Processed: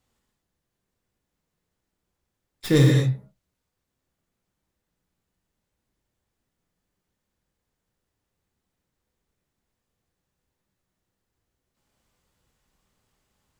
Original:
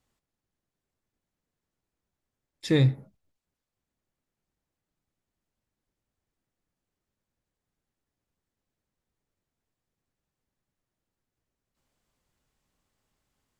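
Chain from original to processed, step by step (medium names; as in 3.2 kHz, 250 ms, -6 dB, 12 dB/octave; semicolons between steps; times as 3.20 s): tracing distortion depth 0.11 ms; gated-style reverb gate 260 ms flat, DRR -0.5 dB; trim +2.5 dB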